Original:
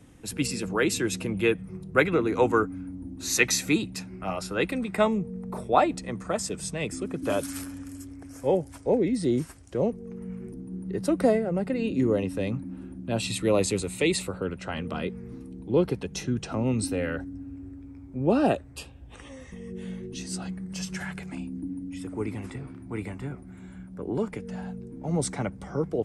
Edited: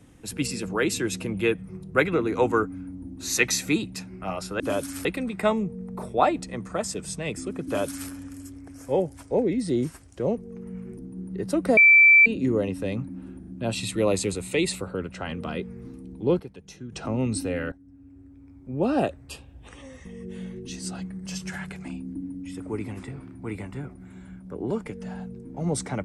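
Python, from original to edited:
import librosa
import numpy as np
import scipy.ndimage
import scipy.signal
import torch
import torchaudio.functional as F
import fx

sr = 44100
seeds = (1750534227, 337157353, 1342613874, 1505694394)

y = fx.edit(x, sr, fx.duplicate(start_s=7.2, length_s=0.45, to_s=4.6),
    fx.bleep(start_s=11.32, length_s=0.49, hz=2330.0, db=-10.5),
    fx.stutter(start_s=12.94, slice_s=0.04, count=3),
    fx.clip_gain(start_s=15.87, length_s=0.52, db=-11.5),
    fx.fade_in_from(start_s=17.19, length_s=1.44, floor_db=-17.5), tone=tone)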